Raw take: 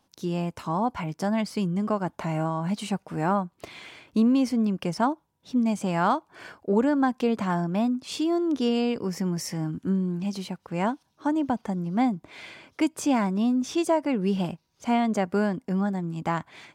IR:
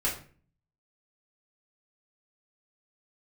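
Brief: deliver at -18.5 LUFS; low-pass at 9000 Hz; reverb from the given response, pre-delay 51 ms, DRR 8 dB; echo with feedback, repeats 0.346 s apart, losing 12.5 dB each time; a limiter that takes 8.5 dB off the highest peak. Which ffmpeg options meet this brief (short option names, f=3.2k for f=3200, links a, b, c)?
-filter_complex "[0:a]lowpass=9k,alimiter=limit=-20dB:level=0:latency=1,aecho=1:1:346|692|1038:0.237|0.0569|0.0137,asplit=2[a][b];[1:a]atrim=start_sample=2205,adelay=51[c];[b][c]afir=irnorm=-1:irlink=0,volume=-16dB[d];[a][d]amix=inputs=2:normalize=0,volume=10dB"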